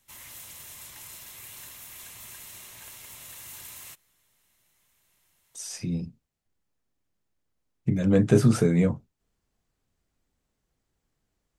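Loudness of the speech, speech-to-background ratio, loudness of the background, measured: -24.0 LUFS, 18.0 dB, -42.0 LUFS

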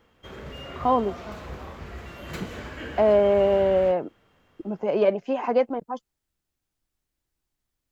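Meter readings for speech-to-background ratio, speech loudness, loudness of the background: 15.5 dB, -23.0 LUFS, -38.5 LUFS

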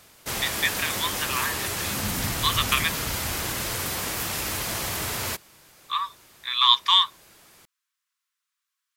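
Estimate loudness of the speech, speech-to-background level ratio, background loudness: -23.5 LUFS, 4.0 dB, -27.5 LUFS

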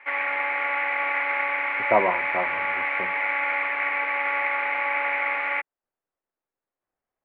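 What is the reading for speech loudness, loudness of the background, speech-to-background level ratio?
-25.5 LUFS, -24.0 LUFS, -1.5 dB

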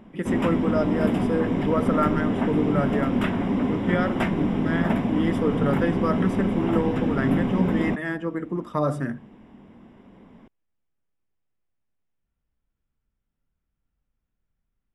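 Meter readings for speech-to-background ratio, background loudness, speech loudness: -2.5 dB, -25.0 LUFS, -27.5 LUFS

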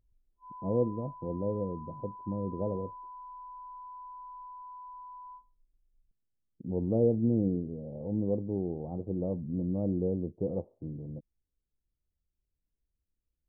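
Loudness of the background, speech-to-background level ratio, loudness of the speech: -47.0 LUFS, 14.0 dB, -33.0 LUFS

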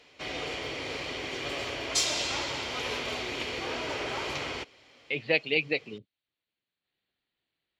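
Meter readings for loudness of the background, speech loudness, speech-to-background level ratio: -32.0 LUFS, -28.5 LUFS, 3.5 dB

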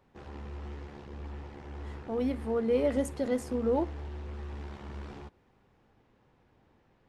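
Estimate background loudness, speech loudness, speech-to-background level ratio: -43.5 LUFS, -31.0 LUFS, 12.5 dB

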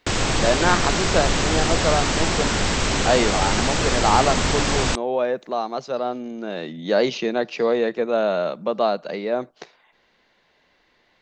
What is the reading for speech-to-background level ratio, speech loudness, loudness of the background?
-2.0 dB, -23.5 LUFS, -21.5 LUFS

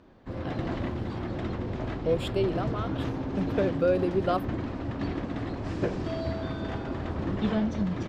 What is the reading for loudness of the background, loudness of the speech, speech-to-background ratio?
-32.5 LUFS, -30.0 LUFS, 2.5 dB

